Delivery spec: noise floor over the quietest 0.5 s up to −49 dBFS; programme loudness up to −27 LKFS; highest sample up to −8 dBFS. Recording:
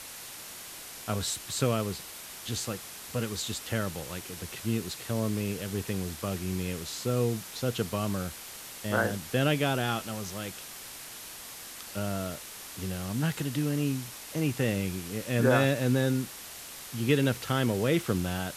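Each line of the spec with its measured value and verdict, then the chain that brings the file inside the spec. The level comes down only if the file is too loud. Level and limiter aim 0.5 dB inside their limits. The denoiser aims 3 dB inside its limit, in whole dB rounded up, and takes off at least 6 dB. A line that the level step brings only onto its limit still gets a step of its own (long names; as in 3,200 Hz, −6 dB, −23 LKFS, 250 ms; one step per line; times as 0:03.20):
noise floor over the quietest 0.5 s −44 dBFS: out of spec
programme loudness −31.0 LKFS: in spec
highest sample −12.0 dBFS: in spec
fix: broadband denoise 8 dB, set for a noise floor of −44 dBFS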